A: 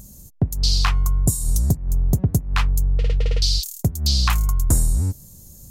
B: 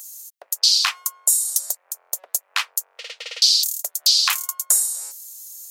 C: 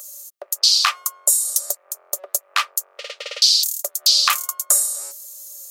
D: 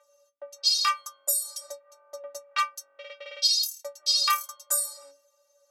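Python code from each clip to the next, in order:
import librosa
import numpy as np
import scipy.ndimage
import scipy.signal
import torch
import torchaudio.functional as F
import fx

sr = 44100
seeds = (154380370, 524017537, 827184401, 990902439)

y1 = scipy.signal.sosfilt(scipy.signal.ellip(4, 1.0, 70, 540.0, 'highpass', fs=sr, output='sos'), x)
y1 = fx.tilt_shelf(y1, sr, db=-10.0, hz=1300.0)
y2 = fx.small_body(y1, sr, hz=(380.0, 570.0, 1200.0), ring_ms=40, db=13)
y2 = y2 * librosa.db_to_amplitude(1.0)
y3 = fx.stiff_resonator(y2, sr, f0_hz=280.0, decay_s=0.23, stiffness=0.008)
y3 = fx.env_lowpass(y3, sr, base_hz=1800.0, full_db=-26.0)
y3 = y3 * librosa.db_to_amplitude(4.0)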